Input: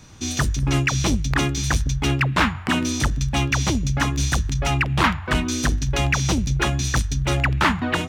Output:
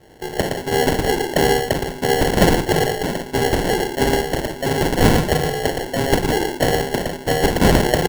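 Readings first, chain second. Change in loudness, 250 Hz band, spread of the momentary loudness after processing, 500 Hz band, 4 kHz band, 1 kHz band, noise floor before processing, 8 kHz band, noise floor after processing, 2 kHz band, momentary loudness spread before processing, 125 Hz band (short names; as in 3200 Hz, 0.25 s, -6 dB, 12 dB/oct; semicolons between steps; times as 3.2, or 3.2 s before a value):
+2.5 dB, +3.5 dB, 7 LU, +13.5 dB, +2.0 dB, +4.5 dB, -33 dBFS, -1.0 dB, -34 dBFS, 0.0 dB, 3 LU, -2.0 dB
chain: mistuned SSB +120 Hz 260–2800 Hz; on a send: echo 0.115 s -5 dB; on the sum: Schroeder reverb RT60 0.32 s, combs from 32 ms, DRR 3 dB; sample-and-hold 36×; gain +5 dB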